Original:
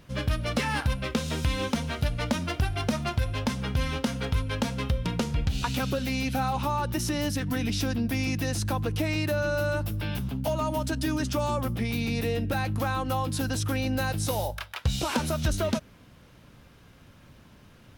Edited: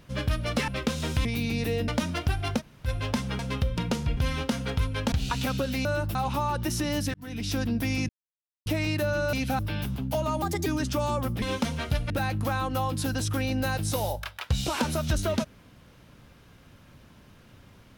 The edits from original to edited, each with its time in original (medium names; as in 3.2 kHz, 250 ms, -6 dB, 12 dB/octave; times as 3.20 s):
0.68–0.96 s: delete
1.53–2.21 s: swap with 11.82–12.45 s
2.92–3.19 s: room tone, crossfade 0.06 s
4.67–5.45 s: move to 3.72 s
6.18–6.44 s: swap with 9.62–9.92 s
7.43–7.87 s: fade in
8.38–8.95 s: mute
10.75–11.06 s: speed 129%